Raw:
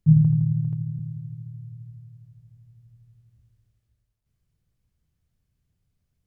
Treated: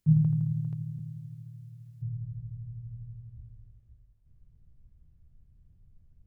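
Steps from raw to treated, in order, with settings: tilt +2 dB/oct, from 2.01 s -4 dB/oct; gain -1 dB

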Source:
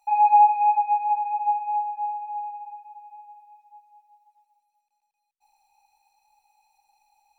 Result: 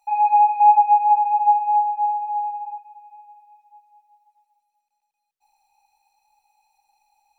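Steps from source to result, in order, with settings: 0.6–2.78 small resonant body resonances 860/1400 Hz, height 8 dB, ringing for 20 ms

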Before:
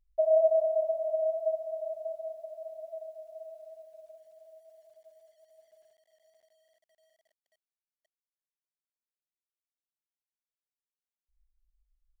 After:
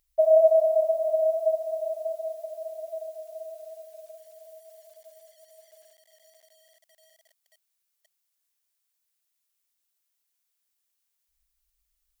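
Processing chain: tilt +3 dB/oct; gain +7.5 dB

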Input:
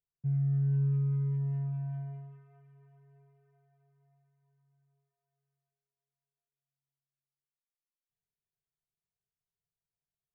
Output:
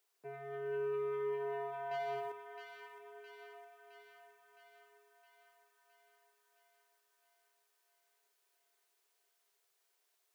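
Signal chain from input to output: elliptic high-pass 360 Hz, stop band 80 dB; 1.91–2.32 sample leveller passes 2; thin delay 0.664 s, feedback 64%, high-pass 1400 Hz, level -5 dB; gain +16.5 dB

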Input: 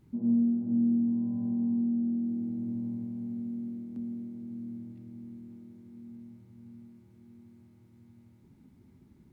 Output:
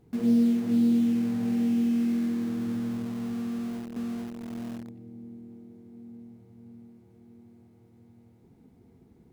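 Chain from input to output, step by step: small resonant body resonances 470/700 Hz, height 16 dB, ringing for 50 ms; in parallel at -9.5 dB: bit-crush 6-bit

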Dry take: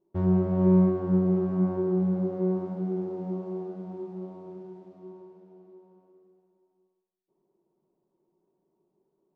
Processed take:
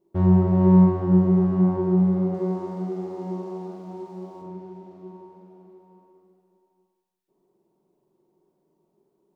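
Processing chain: 2.34–4.42 tone controls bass -8 dB, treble +10 dB; flutter echo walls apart 7.6 m, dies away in 0.5 s; gain +4.5 dB

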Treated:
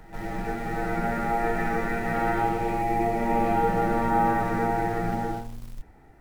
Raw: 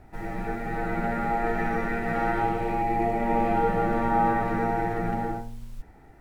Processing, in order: in parallel at -12 dB: bit-crush 6-bit; on the sum: pre-echo 0.149 s -15 dB; gain -1.5 dB

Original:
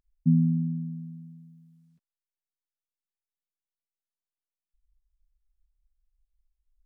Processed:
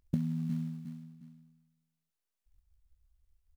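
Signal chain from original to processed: notches 50/100/150 Hz; in parallel at -6.5 dB: short-mantissa float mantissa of 2-bit; on the sum: granular stretch 0.52×, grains 26 ms; on a send: feedback echo 0.358 s, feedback 31%, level -13.5 dB; on the sum: compressor 16:1, threshold -29 dBFS, peak gain reduction 15.5 dB; doubler 21 ms -13.5 dB; gain +1 dB

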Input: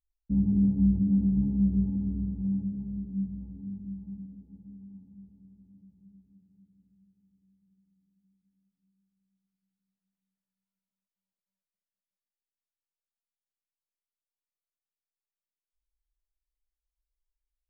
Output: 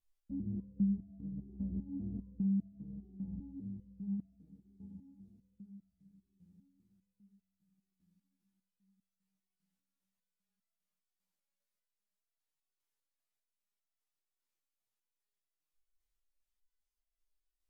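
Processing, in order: treble ducked by the level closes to 620 Hz, closed at -23 dBFS; 2.12–2.84 bell 250 Hz +7 dB 1.2 oct; compressor 4:1, threshold -33 dBFS, peak gain reduction 12 dB; stepped resonator 5 Hz 85–670 Hz; gain +11.5 dB

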